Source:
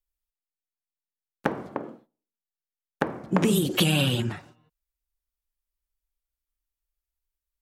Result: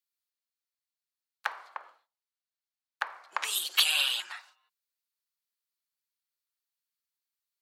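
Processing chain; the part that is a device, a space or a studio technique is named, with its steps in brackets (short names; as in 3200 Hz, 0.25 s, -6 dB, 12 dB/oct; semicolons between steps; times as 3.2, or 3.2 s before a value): headphones lying on a table (HPF 1000 Hz 24 dB/oct; bell 4300 Hz +7 dB 0.39 oct); 1.55–3.44 high shelf 5200 Hz -5.5 dB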